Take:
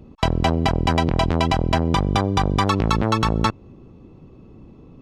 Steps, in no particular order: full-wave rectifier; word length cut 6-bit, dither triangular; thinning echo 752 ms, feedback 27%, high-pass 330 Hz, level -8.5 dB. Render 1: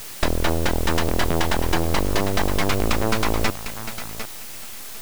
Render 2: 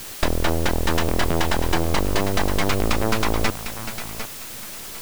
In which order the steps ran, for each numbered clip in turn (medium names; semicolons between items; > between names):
word length cut > thinning echo > full-wave rectifier; thinning echo > full-wave rectifier > word length cut